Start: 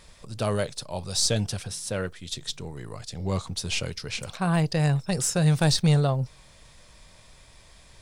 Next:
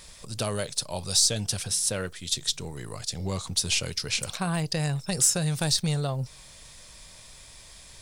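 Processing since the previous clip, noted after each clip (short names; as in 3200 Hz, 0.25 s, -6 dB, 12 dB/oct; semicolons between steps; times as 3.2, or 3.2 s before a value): compressor 3:1, threshold -27 dBFS, peak gain reduction 7.5 dB; high shelf 3500 Hz +11 dB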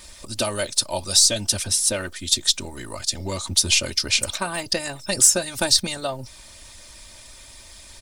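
requantised 12-bit, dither triangular; comb 3.3 ms, depth 90%; harmonic-percussive split harmonic -8 dB; gain +6 dB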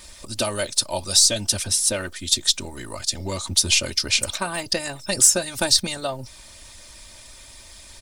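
nothing audible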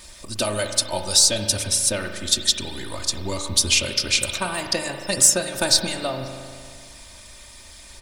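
spring tank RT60 2.1 s, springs 38 ms, chirp 65 ms, DRR 5.5 dB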